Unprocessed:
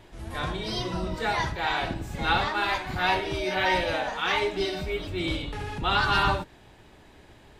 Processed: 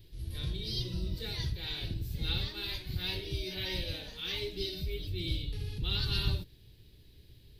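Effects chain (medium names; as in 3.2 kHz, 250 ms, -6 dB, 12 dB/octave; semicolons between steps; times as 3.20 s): FFT filter 120 Hz 0 dB, 240 Hz -12 dB, 450 Hz -11 dB, 730 Hz -29 dB, 1.3 kHz -26 dB, 4.4 kHz +1 dB, 7.3 kHz -14 dB, 13 kHz +6 dB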